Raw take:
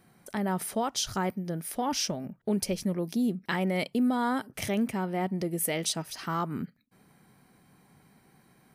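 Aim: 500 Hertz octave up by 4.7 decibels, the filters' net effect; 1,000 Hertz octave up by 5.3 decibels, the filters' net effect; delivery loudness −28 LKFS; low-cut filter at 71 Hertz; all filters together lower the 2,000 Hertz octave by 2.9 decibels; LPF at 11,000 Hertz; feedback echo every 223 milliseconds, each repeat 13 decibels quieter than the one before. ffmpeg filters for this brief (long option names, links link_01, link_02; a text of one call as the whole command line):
ffmpeg -i in.wav -af "highpass=71,lowpass=11000,equalizer=frequency=500:width_type=o:gain=4.5,equalizer=frequency=1000:width_type=o:gain=6.5,equalizer=frequency=2000:width_type=o:gain=-6.5,aecho=1:1:223|446|669:0.224|0.0493|0.0108" out.wav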